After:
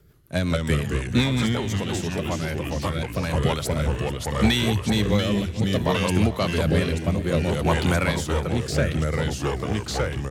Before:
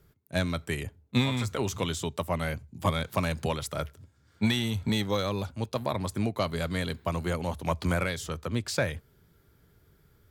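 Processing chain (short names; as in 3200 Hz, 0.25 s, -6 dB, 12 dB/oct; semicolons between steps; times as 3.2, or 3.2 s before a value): in parallel at -5 dB: hard clip -23.5 dBFS, distortion -13 dB; on the sum: vibrato 11 Hz 5.4 cents; echoes that change speed 0.137 s, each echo -2 st, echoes 3; rotary speaker horn 5.5 Hz, later 0.6 Hz, at 2.97; 1.54–3.33 compressor 2.5:1, threshold -28 dBFS, peak gain reduction 6.5 dB; feedback echo 0.438 s, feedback 44%, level -17 dB; gain +3.5 dB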